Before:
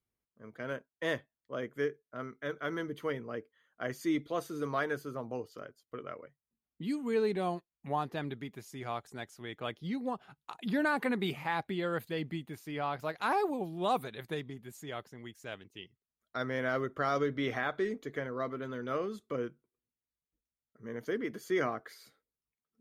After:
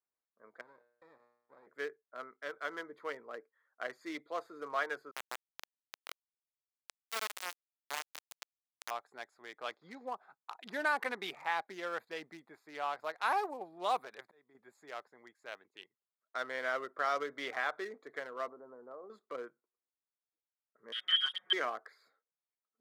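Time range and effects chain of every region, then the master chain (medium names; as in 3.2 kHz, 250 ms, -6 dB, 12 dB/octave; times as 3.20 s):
0.61–1.67 s: feedback comb 120 Hz, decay 0.74 s + compression 10:1, threshold -47 dBFS + sliding maximum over 33 samples
5.11–8.91 s: compression 2.5:1, threshold -49 dBFS + companded quantiser 2-bit
9.63–10.07 s: block-companded coder 5-bit + brick-wall FIR low-pass 7.1 kHz
13.77–14.55 s: de-esser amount 100% + slow attack 661 ms
18.48–19.10 s: low-pass 1 kHz 24 dB/octave + compression 8:1, threshold -38 dBFS
20.92–21.53 s: frequency inversion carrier 3.5 kHz + bass shelf 340 Hz +5 dB + comb 5.5 ms, depth 86%
whole clip: local Wiener filter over 15 samples; high-pass 700 Hz 12 dB/octave; trim +1 dB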